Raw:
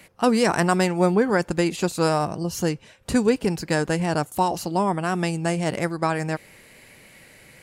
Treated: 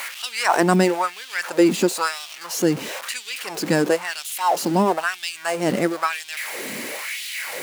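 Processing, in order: zero-crossing step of -26.5 dBFS; LFO high-pass sine 1 Hz 210–3300 Hz

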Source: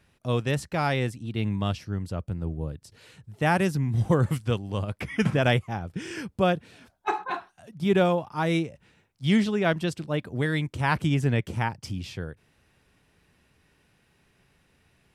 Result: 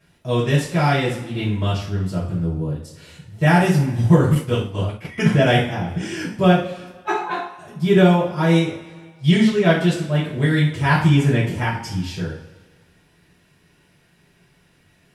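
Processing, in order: two-slope reverb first 0.43 s, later 1.6 s, from -17 dB, DRR -9 dB; 4.35–5.18 expander -17 dBFS; gain -3 dB

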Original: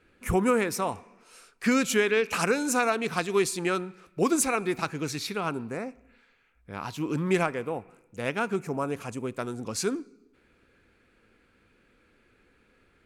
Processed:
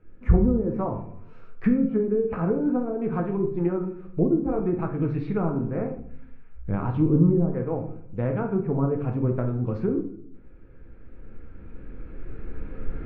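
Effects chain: recorder AGC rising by 6.8 dB/s; treble ducked by the level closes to 380 Hz, closed at -19.5 dBFS; LPF 2200 Hz 12 dB/oct; tilt -4 dB/oct; shoebox room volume 69 m³, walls mixed, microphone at 0.56 m; gain -4.5 dB

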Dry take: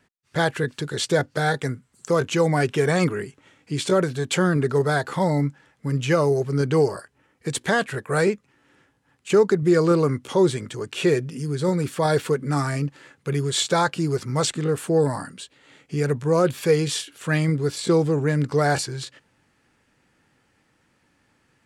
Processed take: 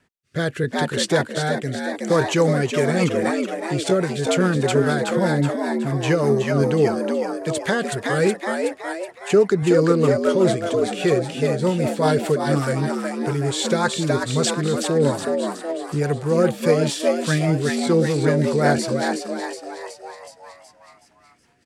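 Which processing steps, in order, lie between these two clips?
frequency-shifting echo 0.371 s, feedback 55%, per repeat +83 Hz, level -4 dB; rotary speaker horn 0.75 Hz, later 5 Hz, at 2.24; gain +2.5 dB

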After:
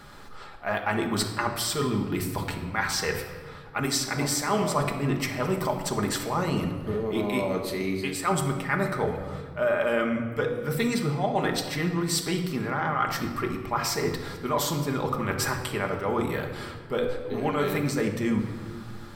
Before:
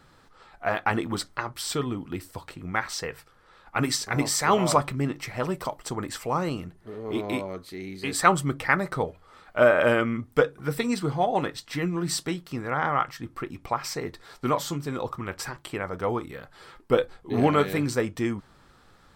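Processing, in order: bell 13000 Hz +5 dB 0.53 oct; notches 60/120/180/240/300/360/420/480 Hz; reverse; compressor 6:1, threshold -34 dBFS, peak gain reduction 19.5 dB; reverse; shoebox room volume 2100 m³, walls mixed, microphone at 1.3 m; gain +8.5 dB

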